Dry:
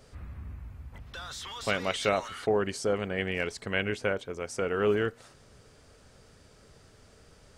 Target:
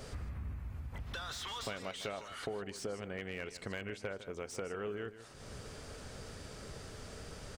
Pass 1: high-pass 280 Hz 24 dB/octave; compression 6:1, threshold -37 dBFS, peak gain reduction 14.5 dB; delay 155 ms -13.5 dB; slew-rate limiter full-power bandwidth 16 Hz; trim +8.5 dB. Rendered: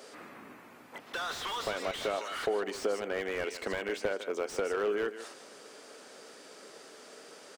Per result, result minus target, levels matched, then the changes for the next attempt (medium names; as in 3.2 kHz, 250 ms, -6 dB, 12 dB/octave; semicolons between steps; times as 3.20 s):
compression: peak gain reduction -10 dB; 250 Hz band -5.0 dB
change: compression 6:1, threshold -48.5 dBFS, peak gain reduction 24.5 dB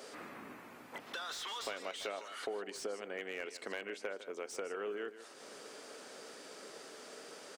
250 Hz band -3.5 dB
remove: high-pass 280 Hz 24 dB/octave